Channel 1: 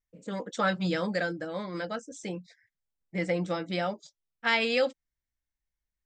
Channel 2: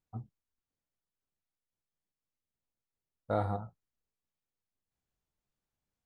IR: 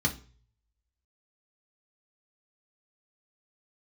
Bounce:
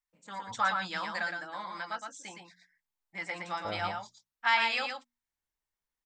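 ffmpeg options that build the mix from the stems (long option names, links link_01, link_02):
-filter_complex "[0:a]lowshelf=frequency=660:width_type=q:width=3:gain=-10,volume=-2.5dB,asplit=2[link_01][link_02];[link_02]volume=-5dB[link_03];[1:a]adelay=350,volume=-6.5dB[link_04];[link_03]aecho=0:1:115:1[link_05];[link_01][link_04][link_05]amix=inputs=3:normalize=0,equalizer=frequency=130:width_type=o:width=1.3:gain=-5,bandreject=frequency=60:width_type=h:width=6,bandreject=frequency=120:width_type=h:width=6,bandreject=frequency=180:width_type=h:width=6,bandreject=frequency=240:width_type=h:width=6"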